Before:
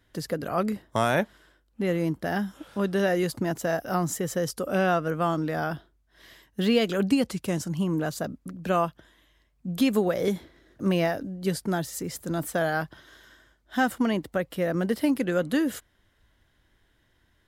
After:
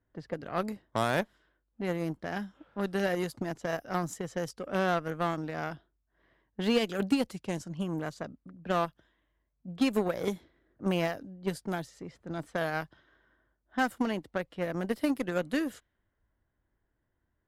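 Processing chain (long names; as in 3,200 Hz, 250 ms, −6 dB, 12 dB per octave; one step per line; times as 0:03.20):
harmonic generator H 7 −22 dB, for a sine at −10 dBFS
low-pass that shuts in the quiet parts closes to 1,300 Hz, open at −24.5 dBFS
level −4 dB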